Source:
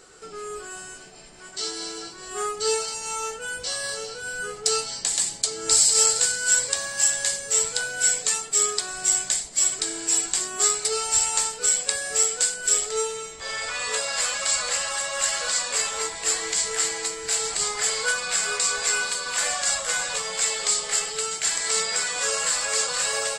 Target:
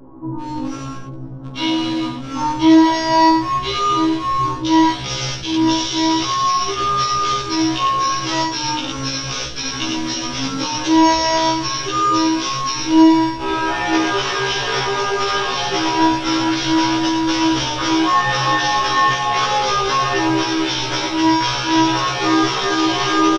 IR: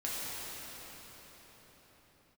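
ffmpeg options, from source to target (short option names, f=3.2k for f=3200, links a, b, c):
-filter_complex "[0:a]acrossover=split=1400[a][b];[a]lowshelf=f=400:g=10.5[c];[b]acrusher=bits=5:mix=0:aa=0.000001[d];[c][d]amix=inputs=2:normalize=0,aecho=1:1:49.56|102:0.501|0.501,alimiter=limit=-12.5dB:level=0:latency=1:release=75,lowpass=4.3k,equalizer=f=2.6k:w=6.8:g=-5,asplit=2[e][f];[1:a]atrim=start_sample=2205,asetrate=48510,aresample=44100,lowshelf=f=110:g=-12[g];[f][g]afir=irnorm=-1:irlink=0,volume=-29dB[h];[e][h]amix=inputs=2:normalize=0,acontrast=83,aecho=1:1:5.3:0.61,asetrate=32097,aresample=44100,atempo=1.37395,afftfilt=real='re*1.73*eq(mod(b,3),0)':imag='im*1.73*eq(mod(b,3),0)':win_size=2048:overlap=0.75,volume=3dB"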